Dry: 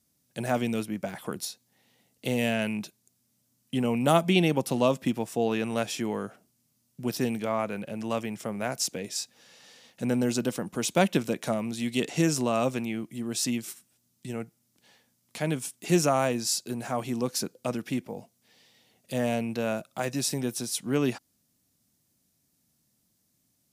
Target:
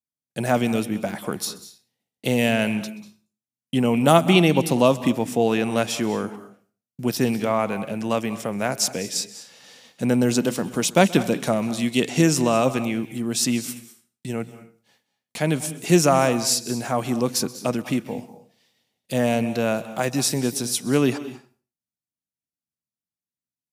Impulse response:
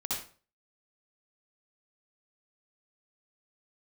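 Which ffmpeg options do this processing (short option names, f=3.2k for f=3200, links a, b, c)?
-filter_complex "[0:a]agate=range=-33dB:threshold=-52dB:ratio=3:detection=peak,asplit=2[a][b];[1:a]atrim=start_sample=2205,adelay=129[c];[b][c]afir=irnorm=-1:irlink=0,volume=-18dB[d];[a][d]amix=inputs=2:normalize=0,volume=6.5dB"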